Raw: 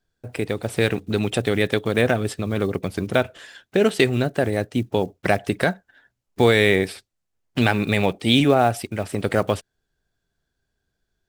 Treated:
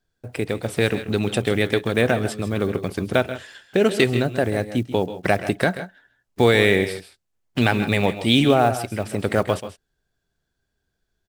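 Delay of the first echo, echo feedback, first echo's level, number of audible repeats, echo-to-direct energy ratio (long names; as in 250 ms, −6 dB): 135 ms, repeats not evenly spaced, −13.5 dB, 1, −11.0 dB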